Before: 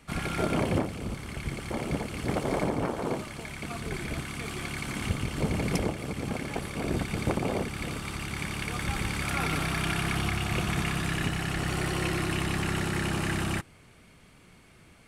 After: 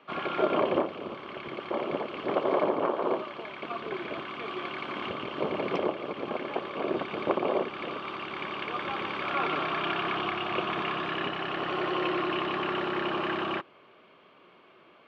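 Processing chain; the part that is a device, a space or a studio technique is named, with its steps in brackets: phone earpiece (cabinet simulation 330–3300 Hz, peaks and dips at 370 Hz +7 dB, 590 Hz +7 dB, 1.1 kHz +9 dB, 2 kHz -5 dB, 3.1 kHz +4 dB)

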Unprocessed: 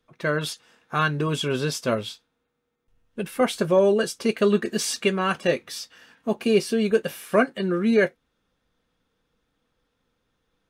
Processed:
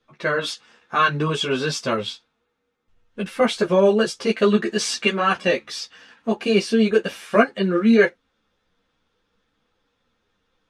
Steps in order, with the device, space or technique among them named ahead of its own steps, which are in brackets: string-machine ensemble chorus (three-phase chorus; low-pass 6.4 kHz 12 dB/octave); bass shelf 440 Hz -4.5 dB; trim +8 dB

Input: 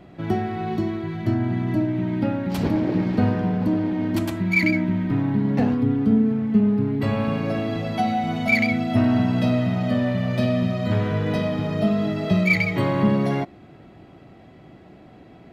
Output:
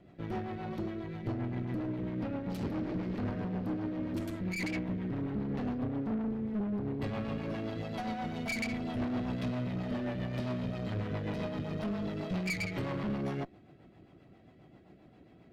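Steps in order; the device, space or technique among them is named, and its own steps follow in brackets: overdriven rotary cabinet (valve stage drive 24 dB, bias 0.7; rotary cabinet horn 7.5 Hz); trim -5.5 dB

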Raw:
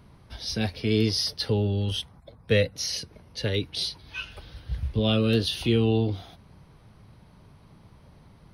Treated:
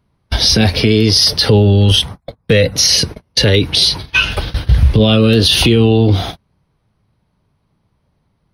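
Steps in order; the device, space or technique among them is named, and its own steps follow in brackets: gate -44 dBFS, range -35 dB; loud club master (compression 1.5:1, threshold -31 dBFS, peak gain reduction 5.5 dB; hard clipper -16 dBFS, distortion -48 dB; loudness maximiser +26 dB); trim -1 dB

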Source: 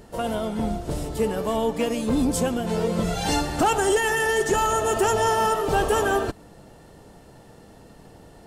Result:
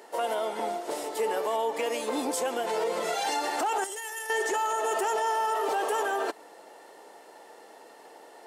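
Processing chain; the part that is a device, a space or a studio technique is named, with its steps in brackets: laptop speaker (high-pass 370 Hz 24 dB/octave; peaking EQ 880 Hz +5.5 dB 0.45 oct; peaking EQ 2 kHz +5 dB 0.37 oct; peak limiter -20.5 dBFS, peak gain reduction 13 dB); 3.84–4.30 s: pre-emphasis filter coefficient 0.8

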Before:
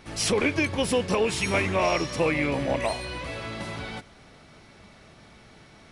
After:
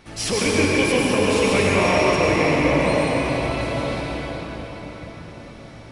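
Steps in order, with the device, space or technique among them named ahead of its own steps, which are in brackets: cathedral (reverberation RT60 5.3 s, pre-delay 90 ms, DRR -5.5 dB)

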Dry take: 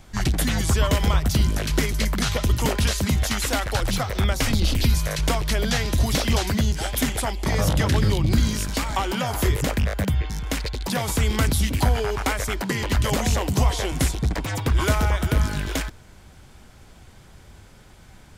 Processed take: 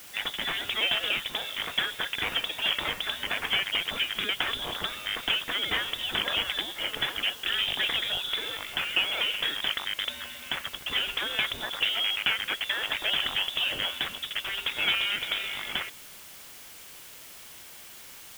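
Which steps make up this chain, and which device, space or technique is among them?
scrambled radio voice (band-pass 390–2900 Hz; frequency inversion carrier 3.7 kHz; white noise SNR 16 dB)

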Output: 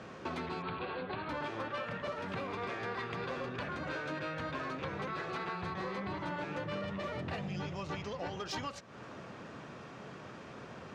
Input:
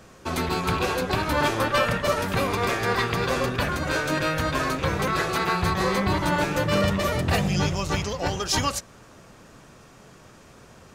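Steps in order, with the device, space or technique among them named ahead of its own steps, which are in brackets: AM radio (band-pass 120–3400 Hz; compression 6:1, threshold -39 dBFS, peak gain reduction 19.5 dB; saturation -30.5 dBFS, distortion -23 dB); 0.62–1.29 s: Chebyshev low-pass 4.4 kHz, order 6; trim +2.5 dB

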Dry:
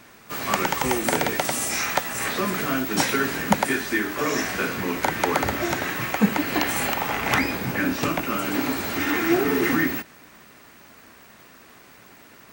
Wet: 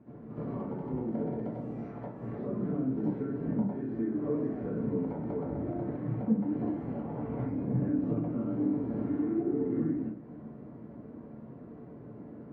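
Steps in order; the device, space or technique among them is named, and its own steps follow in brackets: high-pass 99 Hz 12 dB/octave; television next door (compression, threshold -35 dBFS, peak gain reduction 20.5 dB; low-pass 350 Hz 12 dB/octave; reverberation RT60 0.50 s, pre-delay 60 ms, DRR -10 dB); trim -1.5 dB

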